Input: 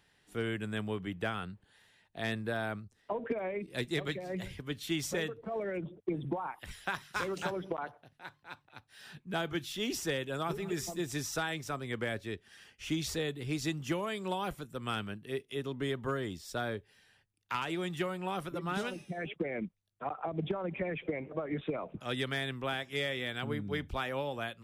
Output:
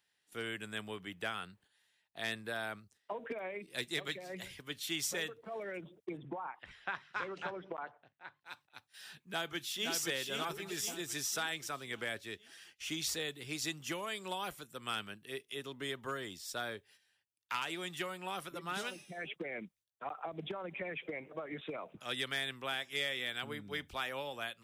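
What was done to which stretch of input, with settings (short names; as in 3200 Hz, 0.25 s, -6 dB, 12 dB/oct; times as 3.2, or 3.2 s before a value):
6.17–8.41 LPF 2200 Hz
9.24–9.92 echo throw 0.52 s, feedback 50%, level -3.5 dB
whole clip: high shelf 8600 Hz -4.5 dB; gate -59 dBFS, range -10 dB; tilt +3 dB/oct; gain -3.5 dB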